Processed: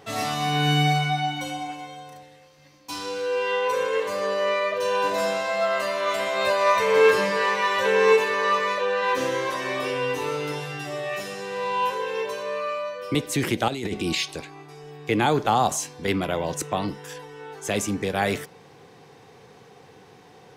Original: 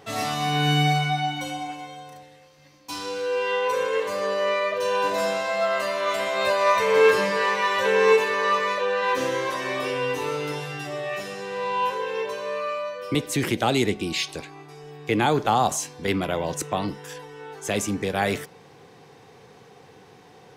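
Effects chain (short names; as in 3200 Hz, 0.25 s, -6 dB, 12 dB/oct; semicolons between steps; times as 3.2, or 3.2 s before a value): 10.87–12.43 high shelf 6400 Hz +5 dB; 13.68–14.15 negative-ratio compressor -28 dBFS, ratio -1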